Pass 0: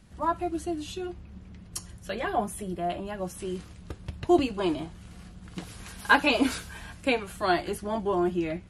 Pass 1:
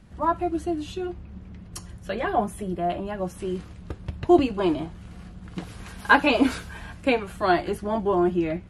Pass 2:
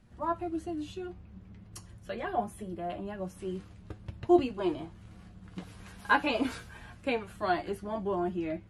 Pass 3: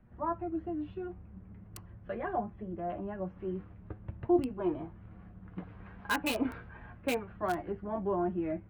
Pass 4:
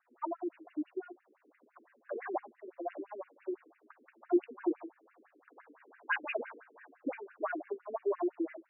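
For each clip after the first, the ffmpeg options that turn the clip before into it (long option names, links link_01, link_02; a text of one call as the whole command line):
ffmpeg -i in.wav -af "highshelf=frequency=3400:gain=-9.5,volume=4.5dB" out.wav
ffmpeg -i in.wav -af "flanger=delay=8.1:depth=2.6:regen=52:speed=0.44:shape=triangular,volume=-4.5dB" out.wav
ffmpeg -i in.wav -filter_complex "[0:a]acrossover=split=320|2200[link_01][link_02][link_03];[link_02]alimiter=limit=-23.5dB:level=0:latency=1:release=499[link_04];[link_03]acrusher=bits=5:mix=0:aa=0.000001[link_05];[link_01][link_04][link_05]amix=inputs=3:normalize=0" out.wav
ffmpeg -i in.wav -af "asoftclip=type=tanh:threshold=-21.5dB,acrusher=bits=6:mode=log:mix=0:aa=0.000001,afftfilt=real='re*between(b*sr/1024,320*pow(2100/320,0.5+0.5*sin(2*PI*5.9*pts/sr))/1.41,320*pow(2100/320,0.5+0.5*sin(2*PI*5.9*pts/sr))*1.41)':imag='im*between(b*sr/1024,320*pow(2100/320,0.5+0.5*sin(2*PI*5.9*pts/sr))/1.41,320*pow(2100/320,0.5+0.5*sin(2*PI*5.9*pts/sr))*1.41)':win_size=1024:overlap=0.75,volume=3.5dB" out.wav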